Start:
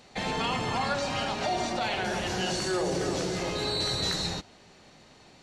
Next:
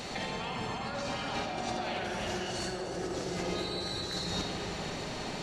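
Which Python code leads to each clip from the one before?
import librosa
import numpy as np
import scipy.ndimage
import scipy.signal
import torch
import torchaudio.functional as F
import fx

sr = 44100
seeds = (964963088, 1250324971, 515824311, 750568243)

y = fx.over_compress(x, sr, threshold_db=-41.0, ratio=-1.0)
y = fx.rev_freeverb(y, sr, rt60_s=4.2, hf_ratio=0.4, predelay_ms=5, drr_db=1.5)
y = y * librosa.db_to_amplitude(3.5)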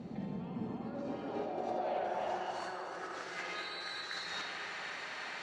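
y = fx.high_shelf(x, sr, hz=6400.0, db=7.5)
y = fx.filter_sweep_bandpass(y, sr, from_hz=200.0, to_hz=1700.0, start_s=0.4, end_s=3.44, q=2.0)
y = y * librosa.db_to_amplitude(4.0)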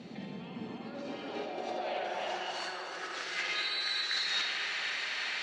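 y = fx.weighting(x, sr, curve='D')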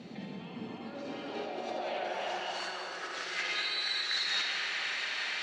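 y = x + 10.0 ** (-9.0 / 20.0) * np.pad(x, (int(187 * sr / 1000.0), 0))[:len(x)]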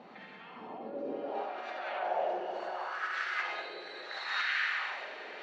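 y = fx.wah_lfo(x, sr, hz=0.71, low_hz=440.0, high_hz=1600.0, q=2.0)
y = y * librosa.db_to_amplitude(7.5)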